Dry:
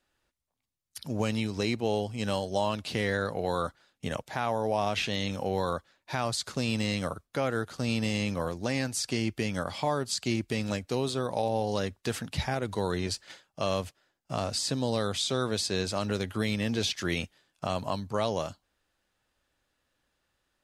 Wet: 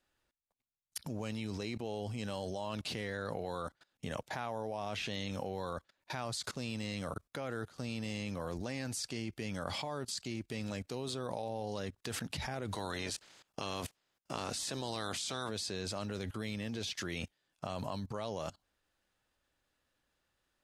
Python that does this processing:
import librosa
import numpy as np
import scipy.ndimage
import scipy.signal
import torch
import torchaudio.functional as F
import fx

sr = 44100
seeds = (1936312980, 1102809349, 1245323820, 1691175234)

y = fx.spec_clip(x, sr, under_db=14, at=(12.73, 15.48), fade=0.02)
y = fx.level_steps(y, sr, step_db=21)
y = y * 10.0 ** (3.0 / 20.0)